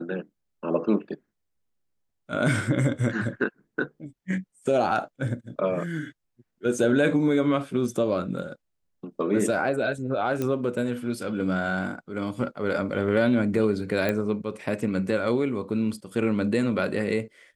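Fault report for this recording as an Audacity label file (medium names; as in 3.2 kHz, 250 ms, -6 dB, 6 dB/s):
10.420000	10.420000	pop -15 dBFS
14.090000	14.090000	pop -13 dBFS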